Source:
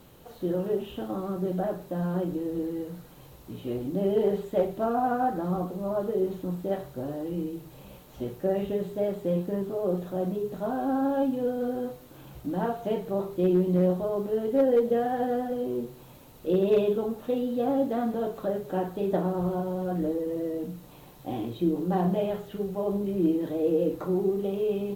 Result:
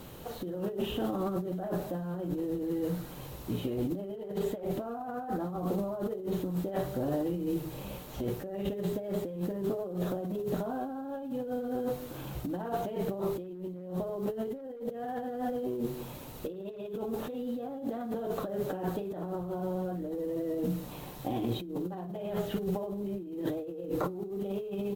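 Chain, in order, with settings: on a send: echo 0.224 s -22.5 dB; on the sum: negative-ratio compressor -35 dBFS, ratio -1

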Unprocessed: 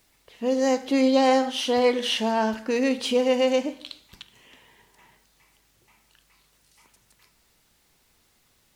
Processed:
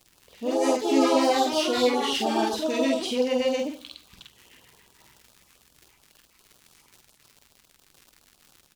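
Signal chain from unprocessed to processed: echoes that change speed 0.119 s, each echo +4 st, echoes 2; crackle 89/s -34 dBFS; doubler 48 ms -3 dB; LFO notch sine 7.2 Hz 550–2200 Hz; gain -3.5 dB

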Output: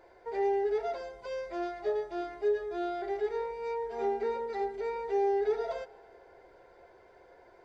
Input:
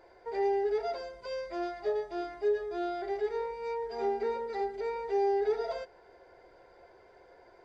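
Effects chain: notch 4800 Hz, Q 14; on a send: reverb RT60 2.6 s, pre-delay 99 ms, DRR 22.5 dB

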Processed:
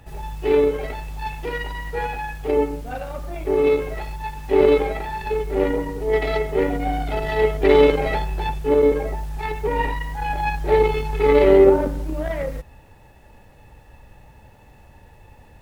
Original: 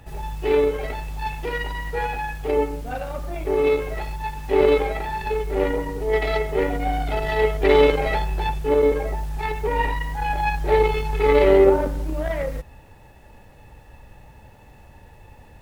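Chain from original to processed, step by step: dynamic EQ 250 Hz, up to +5 dB, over -31 dBFS, Q 0.79; gain -1 dB

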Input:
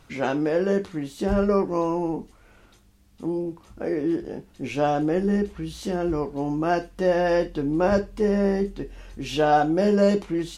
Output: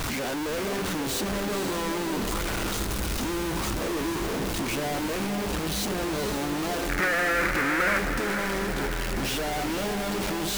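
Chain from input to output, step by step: infinite clipping; 6.89–7.99 band shelf 1700 Hz +14 dB 1.2 oct; diffused feedback echo 0.503 s, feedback 59%, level -7 dB; gain -5.5 dB

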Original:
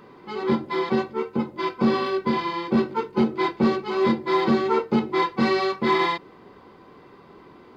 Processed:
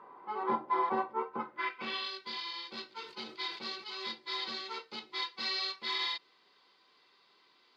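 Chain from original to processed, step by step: band-pass sweep 940 Hz -> 4300 Hz, 1.29–2.1; 2.93–4.03 sustainer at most 93 dB/s; gain +1.5 dB

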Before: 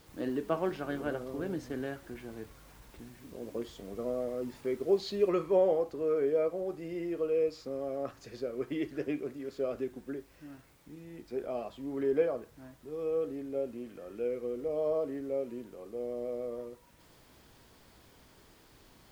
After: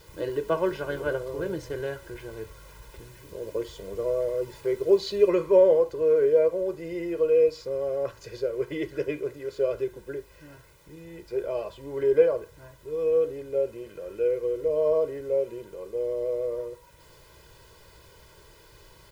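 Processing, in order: comb 2 ms, depth 94%; gain +3.5 dB

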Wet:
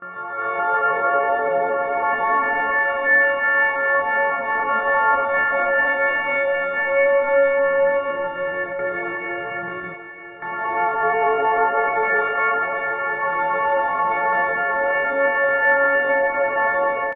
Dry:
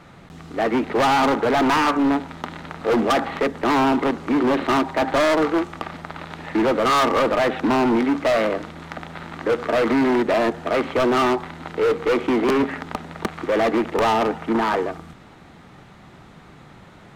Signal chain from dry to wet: frequency quantiser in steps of 4 st; Paulstretch 4.6×, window 0.50 s, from 0.45; gate with hold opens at -20 dBFS; AGC gain up to 10 dB; pitch shift +12 st; steep low-pass 2100 Hz 48 dB/oct; echo 0.942 s -11 dB; gain -4 dB

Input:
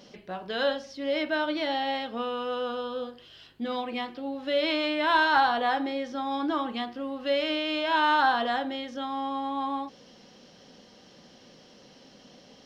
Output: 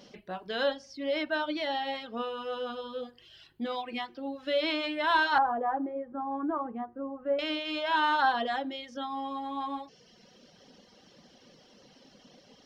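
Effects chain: reverb removal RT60 0.97 s; 5.38–7.39 LPF 1300 Hz 24 dB/oct; gain -1.5 dB

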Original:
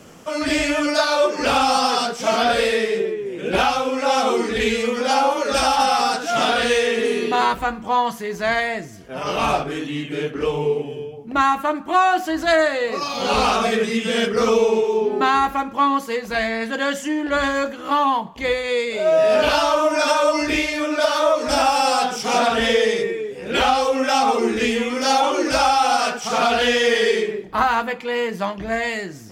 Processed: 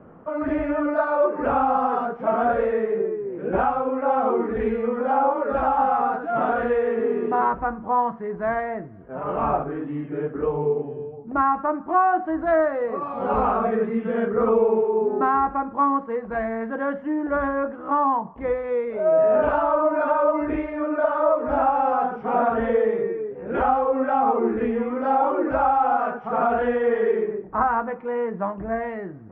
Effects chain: LPF 1400 Hz 24 dB/oct; gain -2 dB

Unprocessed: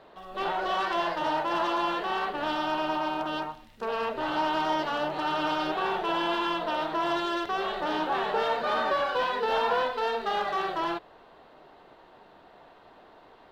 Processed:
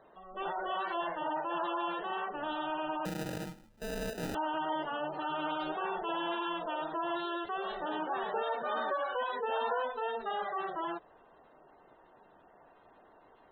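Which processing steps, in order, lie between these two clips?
spectral gate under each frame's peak -20 dB strong; 3.05–4.35 sample-rate reducer 1100 Hz, jitter 0%; gain -6.5 dB

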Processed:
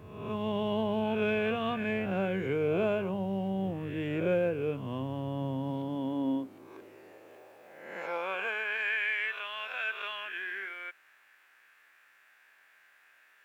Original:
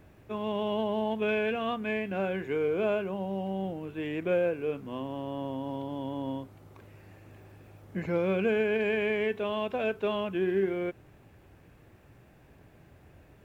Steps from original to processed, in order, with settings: spectral swells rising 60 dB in 0.89 s; high-pass sweep 110 Hz -> 1600 Hz, 5.18–9.07; low shelf 69 Hz +11.5 dB; gain -2.5 dB

